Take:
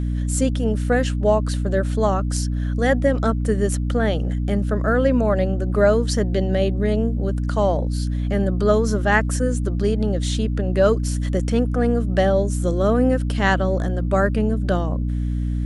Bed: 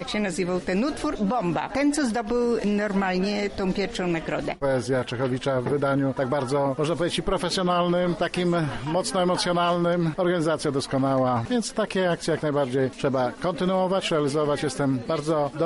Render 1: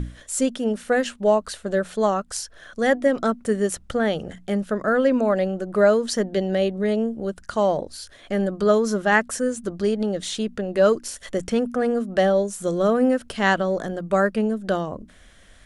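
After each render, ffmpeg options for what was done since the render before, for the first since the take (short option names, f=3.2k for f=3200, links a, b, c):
-af "bandreject=f=60:t=h:w=6,bandreject=f=120:t=h:w=6,bandreject=f=180:t=h:w=6,bandreject=f=240:t=h:w=6,bandreject=f=300:t=h:w=6"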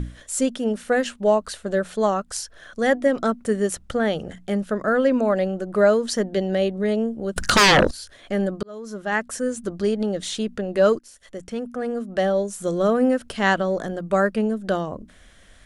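-filter_complex "[0:a]asettb=1/sr,asplit=3[a][b][c];[a]atrim=end=7.364[d];[b]atrim=start=7.36:end=7.91,asetpts=PTS-STARTPTS,afade=t=in:d=0.004:c=qsin,afade=t=out:st=0.546:d=0.004:c=qsin,aeval=exprs='0.299*sin(PI/2*6.31*val(0)/0.299)':c=same[e];[c]atrim=start=7.906[f];[d][e]acrossfade=d=0.004:c1=hsin:c2=qsin[g];[g][f]acrossfade=d=0.004:c1=qsin:c2=hsin,asplit=3[h][i][j];[h]atrim=end=8.63,asetpts=PTS-STARTPTS,afade=t=out:st=8.626:d=0.004:c=hsin[k];[i]atrim=start=8.63:end=10.99,asetpts=PTS-STARTPTS,afade=t=in:d=0.96,afade=t=out:st=2.356:d=0.004:c=hsin:silence=0.149624[l];[j]atrim=start=10.99,asetpts=PTS-STARTPTS,afade=t=in:d=1.78:silence=0.149624[m];[k][l][m]concat=n=3:v=0:a=1"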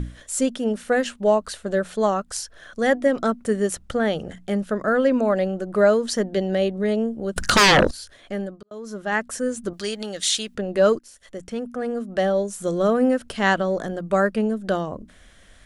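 -filter_complex "[0:a]asettb=1/sr,asplit=3[a][b][c];[a]atrim=end=9.734[d];[b]atrim=start=9.73:end=10.55,asetpts=PTS-STARTPTS,afade=t=in:d=0.004:c=qsin,afade=t=out:st=0.816:d=0.004:c=qsin,tiltshelf=f=1.1k:g=-10[e];[c]atrim=start=10.546[f];[d][e]acrossfade=d=0.004:c1=hsin:c2=qsin[g];[g][f]acrossfade=d=0.004:c1=qsin:c2=hsin,asplit=2[h][i];[h]atrim=end=8.71,asetpts=PTS-STARTPTS,afade=t=out:st=7.82:d=0.89:c=qsin[j];[i]atrim=start=8.71,asetpts=PTS-STARTPTS,afade=t=in:d=0.004:c=hsin[k];[j][k]concat=n=2:v=0:a=1"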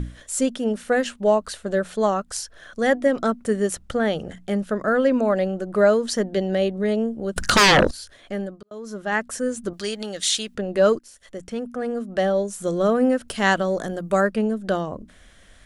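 -filter_complex "[0:a]asettb=1/sr,asplit=3[a][b][c];[a]atrim=end=13.284[d];[b]atrim=start=13.28:end=14.21,asetpts=PTS-STARTPTS,afade=t=in:d=0.004:c=qsin,afade=t=out:st=0.926:d=0.004:c=qsin,highshelf=f=7.4k:g=11[e];[c]atrim=start=14.206[f];[d][e]acrossfade=d=0.004:c1=hsin:c2=qsin[g];[g][f]acrossfade=d=0.004:c1=qsin:c2=hsin"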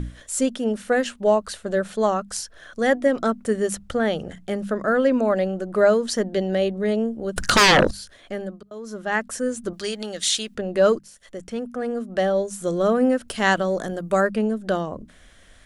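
-af "bandreject=f=50:t=h:w=6,bandreject=f=100:t=h:w=6,bandreject=f=150:t=h:w=6,bandreject=f=200:t=h:w=6"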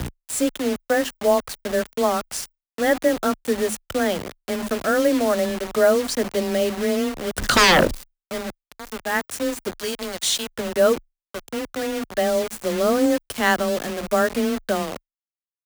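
-af "acrusher=bits=4:mix=0:aa=0.000001,afreqshift=17"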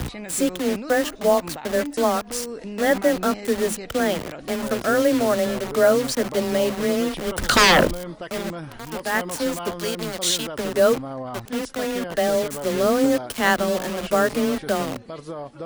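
-filter_complex "[1:a]volume=-10dB[a];[0:a][a]amix=inputs=2:normalize=0"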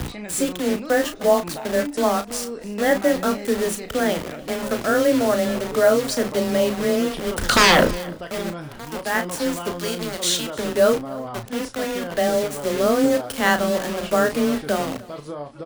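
-filter_complex "[0:a]asplit=2[a][b];[b]adelay=34,volume=-8.5dB[c];[a][c]amix=inputs=2:normalize=0,aecho=1:1:298:0.0841"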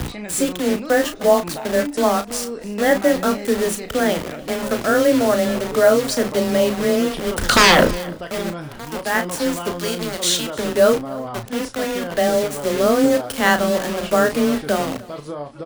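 -af "volume=2.5dB,alimiter=limit=-1dB:level=0:latency=1"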